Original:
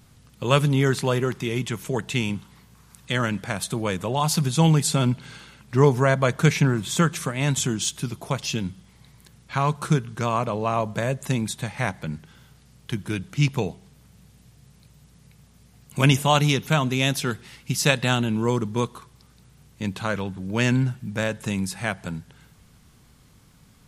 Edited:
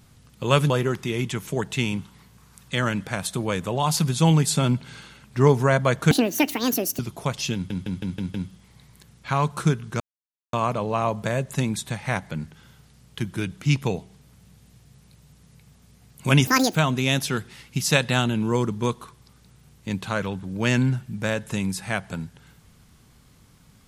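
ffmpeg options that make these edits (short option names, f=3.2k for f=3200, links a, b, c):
-filter_complex "[0:a]asplit=12[a][b][c][d][e][f][g][h][i][j][k][l];[a]atrim=end=0.702[m];[b]atrim=start=1.068:end=6.484[n];[c]atrim=start=6.48:end=8.04,asetpts=PTS-STARTPTS,asetrate=78057,aresample=44100[o];[d]atrim=start=8.036:end=8.752[p];[e]atrim=start=8.588:end=8.752[q];[f]atrim=start=8.588:end=8.752[r];[g]atrim=start=8.588:end=8.752[s];[h]atrim=start=8.588:end=8.752[t];[i]atrim=start=8.588:end=10.25,asetpts=PTS-STARTPTS,afade=t=out:st=1.658:d=0.004:c=hsin,apad=pad_dur=0.53[u];[j]atrim=start=10.25:end=16.194,asetpts=PTS-STARTPTS,afade=t=in:d=0.004:c=hsin[v];[k]atrim=start=16.19:end=16.69,asetpts=PTS-STARTPTS,asetrate=78498,aresample=44100[w];[l]atrim=start=16.686[x];[m][n]acrossfade=d=0.004:c1=hsin:c2=hsin[y];[y][o]acrossfade=d=0.004:c1=hsin:c2=hsin[z];[z][p]acrossfade=d=0.004:c1=hsin:c2=hsin[aa];[aa][q]acrossfade=d=0.004:c1=hsin:c2=hsin[ab];[ab][r]acrossfade=d=0.004:c1=hsin:c2=hsin[ac];[ac][s]acrossfade=d=0.004:c1=hsin:c2=hsin[ad];[ad][t]acrossfade=d=0.004:c1=hsin:c2=hsin[ae];[u][v]concat=n=2:v=0:a=1[af];[ae][af]acrossfade=d=0.004:c1=hsin:c2=hsin[ag];[ag][w]acrossfade=d=0.004:c1=hsin:c2=hsin[ah];[ah][x]acrossfade=d=0.004:c1=hsin:c2=hsin"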